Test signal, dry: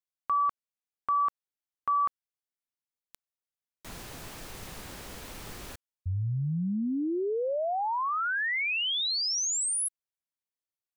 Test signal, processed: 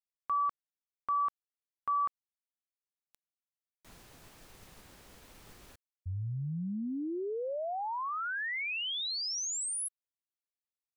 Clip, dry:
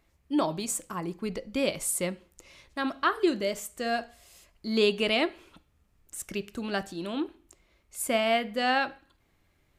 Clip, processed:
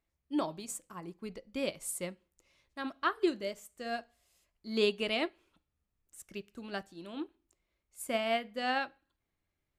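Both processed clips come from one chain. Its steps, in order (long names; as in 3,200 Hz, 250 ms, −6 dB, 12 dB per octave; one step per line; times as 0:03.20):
expander for the loud parts 1.5 to 1, over −44 dBFS
level −4 dB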